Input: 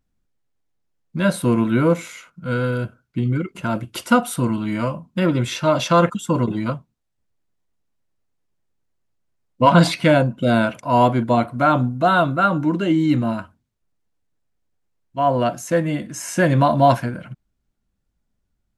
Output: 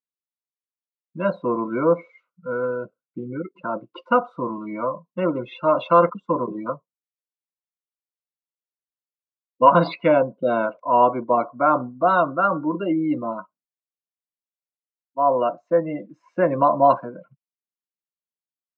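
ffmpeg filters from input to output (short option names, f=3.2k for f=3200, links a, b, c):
-af "highpass=f=190:w=0.5412,highpass=f=190:w=1.3066,equalizer=f=230:t=q:w=4:g=-8,equalizer=f=530:t=q:w=4:g=5,equalizer=f=1.1k:t=q:w=4:g=8,equalizer=f=1.7k:t=q:w=4:g=-7,equalizer=f=3.2k:t=q:w=4:g=-7,lowpass=f=4k:w=0.5412,lowpass=f=4k:w=1.3066,afftdn=nr=25:nf=-29,volume=-3dB"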